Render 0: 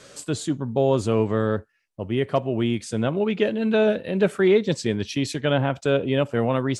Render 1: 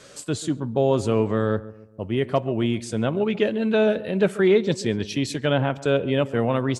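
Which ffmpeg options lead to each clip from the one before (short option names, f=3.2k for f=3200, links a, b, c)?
-filter_complex "[0:a]asplit=2[a][b];[b]adelay=138,lowpass=f=1.3k:p=1,volume=-16.5dB,asplit=2[c][d];[d]adelay=138,lowpass=f=1.3k:p=1,volume=0.44,asplit=2[e][f];[f]adelay=138,lowpass=f=1.3k:p=1,volume=0.44,asplit=2[g][h];[h]adelay=138,lowpass=f=1.3k:p=1,volume=0.44[i];[a][c][e][g][i]amix=inputs=5:normalize=0"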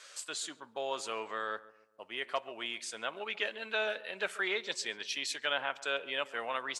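-af "highpass=1.2k,highshelf=f=9k:g=-5.5,volume=-2dB"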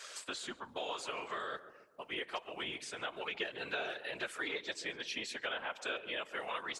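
-filter_complex "[0:a]acrossover=split=950|3200[a][b][c];[a]acompressor=threshold=-48dB:ratio=4[d];[b]acompressor=threshold=-46dB:ratio=4[e];[c]acompressor=threshold=-53dB:ratio=4[f];[d][e][f]amix=inputs=3:normalize=0,afftfilt=real='hypot(re,im)*cos(2*PI*random(0))':imag='hypot(re,im)*sin(2*PI*random(1))':win_size=512:overlap=0.75,volume=10.5dB"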